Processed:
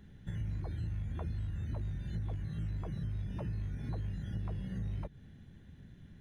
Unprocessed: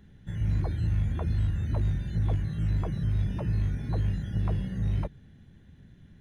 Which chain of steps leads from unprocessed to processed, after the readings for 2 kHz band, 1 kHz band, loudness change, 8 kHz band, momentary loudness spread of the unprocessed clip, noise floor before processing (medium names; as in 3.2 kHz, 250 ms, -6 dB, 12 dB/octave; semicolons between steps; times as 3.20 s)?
-8.5 dB, -9.0 dB, -10.0 dB, no reading, 2 LU, -55 dBFS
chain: compression 6:1, threshold -34 dBFS, peak gain reduction 11 dB; trim -1 dB